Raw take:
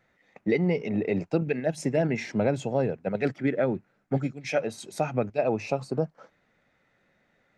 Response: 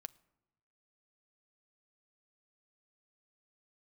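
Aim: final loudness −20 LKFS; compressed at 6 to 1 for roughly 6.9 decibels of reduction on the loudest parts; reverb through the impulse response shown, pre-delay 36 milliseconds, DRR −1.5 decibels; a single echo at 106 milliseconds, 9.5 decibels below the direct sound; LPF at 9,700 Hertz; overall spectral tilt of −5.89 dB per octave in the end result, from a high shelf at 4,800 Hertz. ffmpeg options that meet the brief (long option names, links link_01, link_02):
-filter_complex "[0:a]lowpass=9700,highshelf=frequency=4800:gain=4,acompressor=threshold=-27dB:ratio=6,aecho=1:1:106:0.335,asplit=2[link_01][link_02];[1:a]atrim=start_sample=2205,adelay=36[link_03];[link_02][link_03]afir=irnorm=-1:irlink=0,volume=6.5dB[link_04];[link_01][link_04]amix=inputs=2:normalize=0,volume=9dB"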